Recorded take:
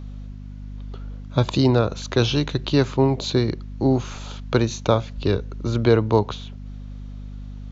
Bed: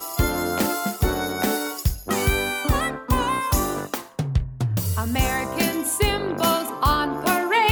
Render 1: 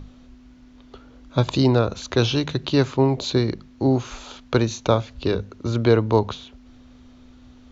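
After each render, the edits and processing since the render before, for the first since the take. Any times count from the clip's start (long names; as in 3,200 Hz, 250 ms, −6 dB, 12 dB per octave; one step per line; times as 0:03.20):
mains-hum notches 50/100/150/200 Hz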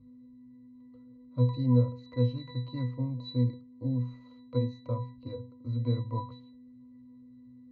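resonances in every octave B, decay 0.32 s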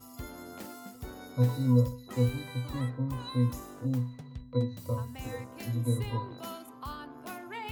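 mix in bed −21.5 dB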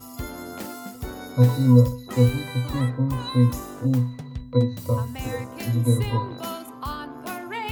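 level +9 dB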